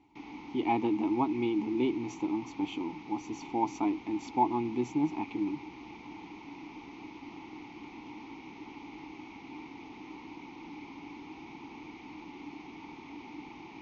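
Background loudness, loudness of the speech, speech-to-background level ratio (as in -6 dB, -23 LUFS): -46.5 LUFS, -32.5 LUFS, 14.0 dB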